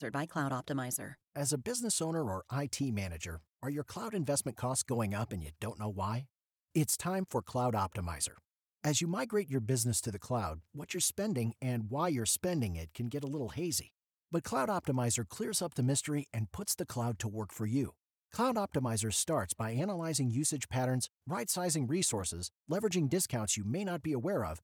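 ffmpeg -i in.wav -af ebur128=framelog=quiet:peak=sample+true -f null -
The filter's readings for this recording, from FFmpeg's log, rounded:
Integrated loudness:
  I:         -34.7 LUFS
  Threshold: -44.8 LUFS
Loudness range:
  LRA:         2.7 LU
  Threshold: -54.8 LUFS
  LRA low:   -36.2 LUFS
  LRA high:  -33.5 LUFS
Sample peak:
  Peak:      -19.2 dBFS
True peak:
  Peak:      -18.5 dBFS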